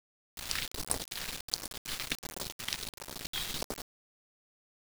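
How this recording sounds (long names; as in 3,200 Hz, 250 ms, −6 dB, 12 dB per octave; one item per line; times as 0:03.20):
chopped level 2.7 Hz, depth 65%, duty 80%
phaser sweep stages 2, 1.4 Hz, lowest notch 490–2,700 Hz
a quantiser's noise floor 6 bits, dither none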